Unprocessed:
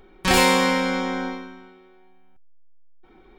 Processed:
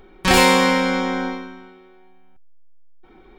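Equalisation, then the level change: peaking EQ 13 kHz -2 dB 1.8 oct; +3.5 dB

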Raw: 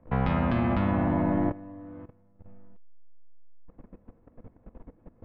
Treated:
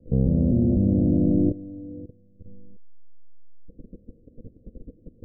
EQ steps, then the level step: steep low-pass 520 Hz 48 dB/octave; +6.0 dB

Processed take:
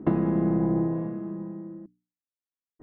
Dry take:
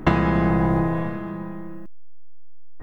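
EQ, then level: band-pass filter 280 Hz, Q 1.4; distance through air 60 m; hum notches 60/120/180/240/300 Hz; 0.0 dB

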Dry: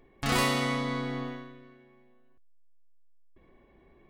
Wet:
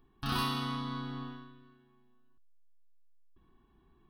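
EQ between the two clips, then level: static phaser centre 2.1 kHz, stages 6; -3.5 dB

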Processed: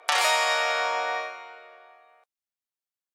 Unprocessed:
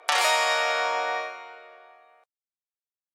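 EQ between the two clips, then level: bass shelf 280 Hz -6 dB; 0.0 dB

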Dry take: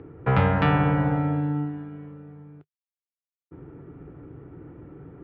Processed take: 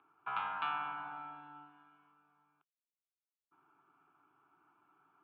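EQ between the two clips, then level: Butterworth band-pass 2.4 kHz, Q 0.54; distance through air 260 m; static phaser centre 1.9 kHz, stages 6; -4.5 dB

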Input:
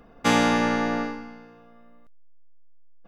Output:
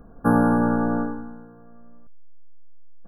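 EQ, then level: brick-wall FIR band-stop 1.7–9.8 kHz; bass shelf 260 Hz +11 dB; -1.5 dB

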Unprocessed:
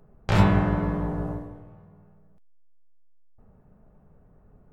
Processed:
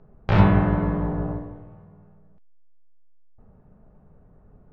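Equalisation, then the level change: distance through air 240 m; +3.0 dB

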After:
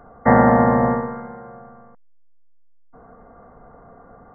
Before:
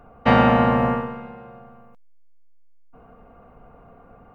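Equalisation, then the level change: dynamic bell 1.4 kHz, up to -6 dB, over -37 dBFS, Q 2.3; brick-wall FIR low-pass 2.1 kHz; bass shelf 160 Hz -5 dB; +4.0 dB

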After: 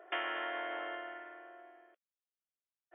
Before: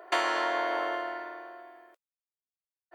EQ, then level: dynamic bell 480 Hz, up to -5 dB, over -45 dBFS, Q 0.73; brick-wall FIR band-pass 250–3500 Hz; peaking EQ 990 Hz -9.5 dB 0.28 oct; -6.0 dB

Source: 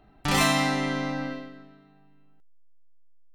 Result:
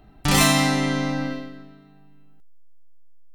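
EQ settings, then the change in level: bass shelf 300 Hz +7 dB; treble shelf 4.4 kHz +9 dB; +1.5 dB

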